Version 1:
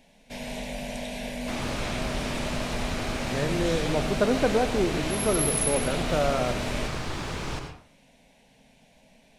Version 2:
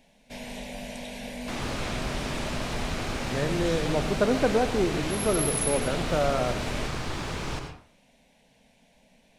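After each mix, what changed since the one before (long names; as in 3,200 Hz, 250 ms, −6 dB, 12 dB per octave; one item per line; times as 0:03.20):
first sound: send off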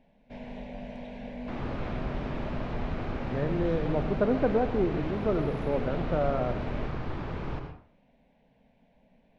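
master: add head-to-tape spacing loss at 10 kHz 42 dB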